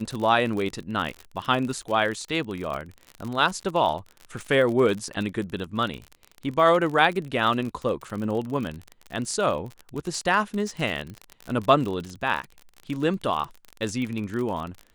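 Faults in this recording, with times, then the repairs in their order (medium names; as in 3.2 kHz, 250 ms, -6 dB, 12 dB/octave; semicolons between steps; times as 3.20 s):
crackle 44 per s -29 dBFS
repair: de-click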